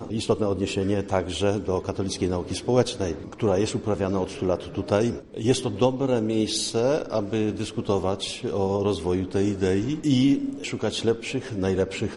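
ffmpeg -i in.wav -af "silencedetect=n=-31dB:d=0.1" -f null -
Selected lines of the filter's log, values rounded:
silence_start: 5.20
silence_end: 5.34 | silence_duration: 0.14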